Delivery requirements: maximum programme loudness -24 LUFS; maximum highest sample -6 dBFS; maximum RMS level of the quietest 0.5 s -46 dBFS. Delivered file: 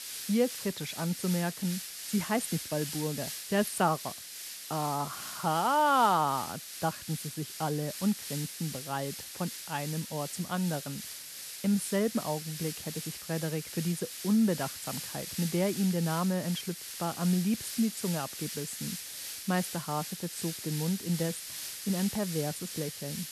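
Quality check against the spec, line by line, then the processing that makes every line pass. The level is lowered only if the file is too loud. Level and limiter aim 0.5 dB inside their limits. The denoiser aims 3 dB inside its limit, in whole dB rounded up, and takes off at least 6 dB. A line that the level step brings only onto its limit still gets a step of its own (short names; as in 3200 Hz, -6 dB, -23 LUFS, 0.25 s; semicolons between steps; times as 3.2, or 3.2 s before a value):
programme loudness -32.0 LUFS: OK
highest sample -12.5 dBFS: OK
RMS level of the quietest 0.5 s -44 dBFS: fail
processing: denoiser 6 dB, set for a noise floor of -44 dBFS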